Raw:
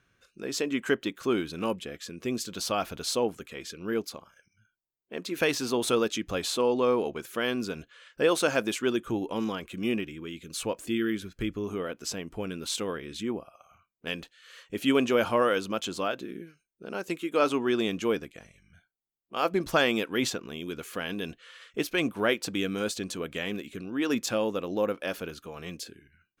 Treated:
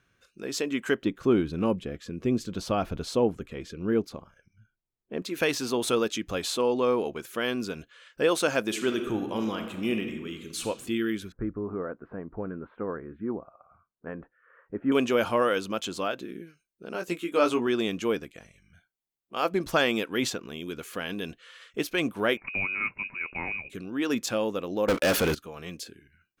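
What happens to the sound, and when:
0:01.02–0:05.22: spectral tilt −3 dB per octave
0:08.65–0:10.66: thrown reverb, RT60 1.2 s, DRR 5.5 dB
0:11.32–0:14.92: Butterworth low-pass 1,600 Hz
0:16.93–0:17.67: double-tracking delay 17 ms −5.5 dB
0:22.37–0:23.70: voice inversion scrambler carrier 2,700 Hz
0:24.88–0:25.35: leveller curve on the samples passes 5

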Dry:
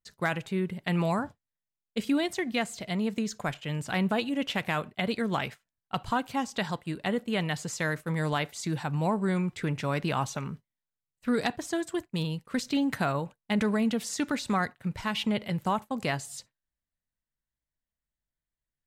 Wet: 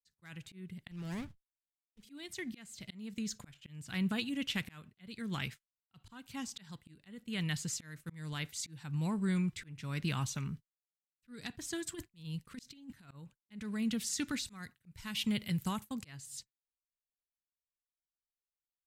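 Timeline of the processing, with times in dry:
0:00.91–0:02.03: windowed peak hold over 17 samples
0:11.86–0:13.11: compressor whose output falls as the input rises −32 dBFS, ratio −0.5
0:14.46–0:15.94: high-shelf EQ 7,600 Hz +9.5 dB
whole clip: noise gate −43 dBFS, range −21 dB; guitar amp tone stack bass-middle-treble 6-0-2; volume swells 441 ms; level +13.5 dB

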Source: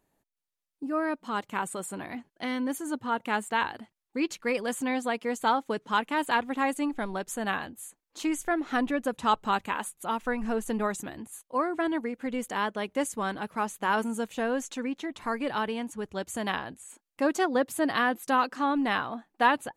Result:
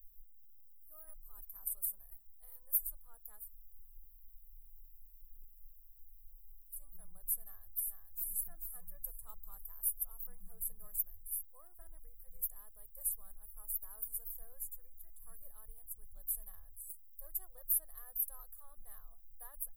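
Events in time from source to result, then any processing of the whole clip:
0:03.41–0:06.77: fill with room tone, crossfade 0.16 s
0:07.41–0:08.22: delay throw 440 ms, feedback 40%, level −4 dB
whole clip: inverse Chebyshev band-stop filter 110–6,000 Hz, stop band 70 dB; comb filter 1.7 ms, depth 35%; every bin compressed towards the loudest bin 10 to 1; level +10.5 dB

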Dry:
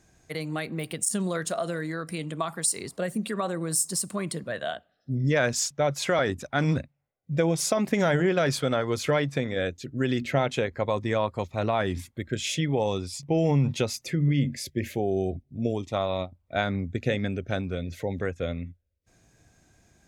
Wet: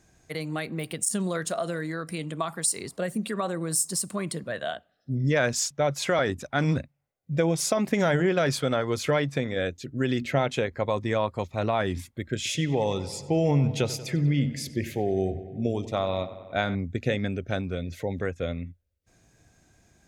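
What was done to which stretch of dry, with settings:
0:12.36–0:16.75: feedback echo with a low-pass in the loop 94 ms, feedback 72%, low-pass 5,000 Hz, level −15 dB

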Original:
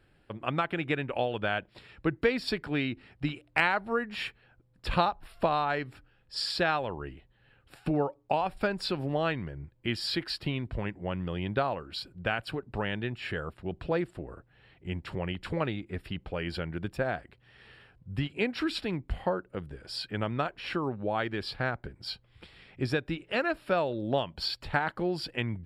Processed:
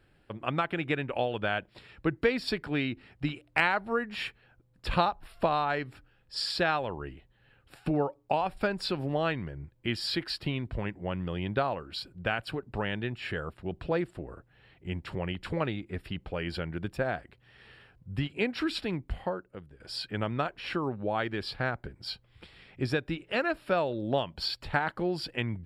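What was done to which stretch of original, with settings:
0:18.94–0:19.80: fade out, to −13 dB

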